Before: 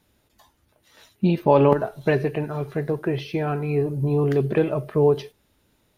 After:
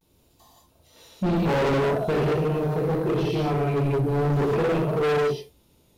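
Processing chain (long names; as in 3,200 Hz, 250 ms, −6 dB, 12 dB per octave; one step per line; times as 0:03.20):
parametric band 1,700 Hz −11.5 dB 0.85 octaves
reverb whose tail is shaped and stops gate 230 ms flat, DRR −6 dB
gain into a clipping stage and back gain 18.5 dB
pitch vibrato 0.46 Hz 50 cents
level −2 dB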